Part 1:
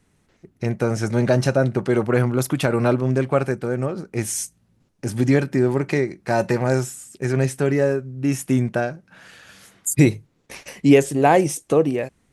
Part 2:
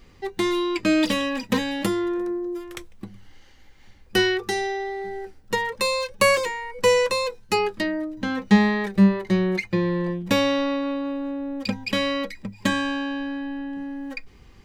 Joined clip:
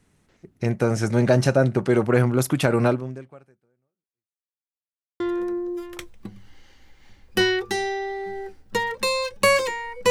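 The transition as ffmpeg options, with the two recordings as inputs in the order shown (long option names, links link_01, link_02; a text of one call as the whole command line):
ffmpeg -i cue0.wav -i cue1.wav -filter_complex "[0:a]apad=whole_dur=10.1,atrim=end=10.1,asplit=2[link_01][link_02];[link_01]atrim=end=4.71,asetpts=PTS-STARTPTS,afade=type=out:start_time=2.86:duration=1.85:curve=exp[link_03];[link_02]atrim=start=4.71:end=5.2,asetpts=PTS-STARTPTS,volume=0[link_04];[1:a]atrim=start=1.98:end=6.88,asetpts=PTS-STARTPTS,afade=type=in:duration=0.004:curve=hsin[link_05];[link_03][link_04][link_05]concat=n=3:v=0:a=1" out.wav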